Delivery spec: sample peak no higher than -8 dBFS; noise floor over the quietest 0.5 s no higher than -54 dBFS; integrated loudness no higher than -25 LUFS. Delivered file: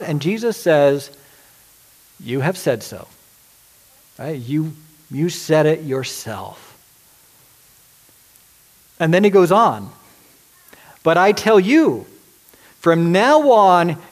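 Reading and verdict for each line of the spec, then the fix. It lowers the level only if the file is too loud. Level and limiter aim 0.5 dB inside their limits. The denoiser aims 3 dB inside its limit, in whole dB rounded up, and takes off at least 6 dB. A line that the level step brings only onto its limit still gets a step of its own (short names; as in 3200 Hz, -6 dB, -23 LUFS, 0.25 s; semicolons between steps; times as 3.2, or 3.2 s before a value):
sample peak -3.0 dBFS: fail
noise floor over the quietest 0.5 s -51 dBFS: fail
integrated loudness -16.0 LUFS: fail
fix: gain -9.5 dB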